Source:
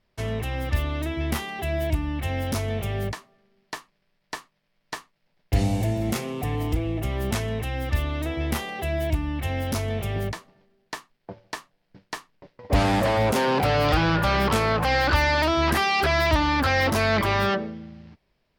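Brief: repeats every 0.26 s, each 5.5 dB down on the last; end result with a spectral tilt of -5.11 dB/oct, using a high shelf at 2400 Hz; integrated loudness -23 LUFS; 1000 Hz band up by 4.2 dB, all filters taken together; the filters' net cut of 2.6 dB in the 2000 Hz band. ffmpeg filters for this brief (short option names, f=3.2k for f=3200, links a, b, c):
-af "equalizer=f=1k:t=o:g=6.5,equalizer=f=2k:t=o:g=-7.5,highshelf=f=2.4k:g=4,aecho=1:1:260|520|780|1040|1300|1560|1820:0.531|0.281|0.149|0.079|0.0419|0.0222|0.0118,volume=-1.5dB"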